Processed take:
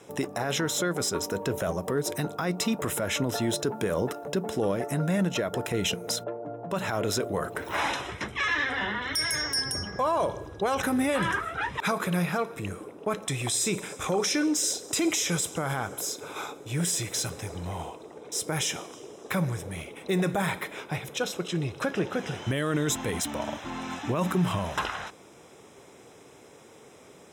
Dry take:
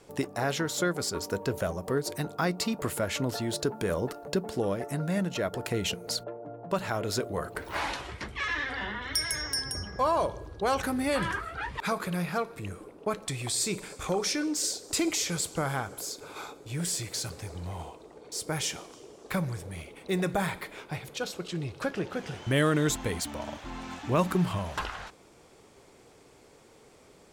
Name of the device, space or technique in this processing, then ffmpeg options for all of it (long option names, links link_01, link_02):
PA system with an anti-feedback notch: -af "highpass=100,asuperstop=centerf=4500:order=20:qfactor=7.1,alimiter=limit=-22.5dB:level=0:latency=1:release=33,volume=5dB"